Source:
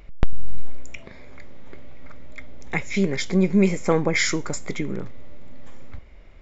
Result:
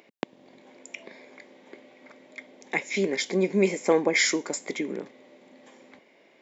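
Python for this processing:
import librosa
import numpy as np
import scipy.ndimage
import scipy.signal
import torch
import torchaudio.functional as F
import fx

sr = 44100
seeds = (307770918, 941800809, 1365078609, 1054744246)

y = scipy.signal.sosfilt(scipy.signal.butter(4, 250.0, 'highpass', fs=sr, output='sos'), x)
y = fx.peak_eq(y, sr, hz=1300.0, db=-10.5, octaves=0.31)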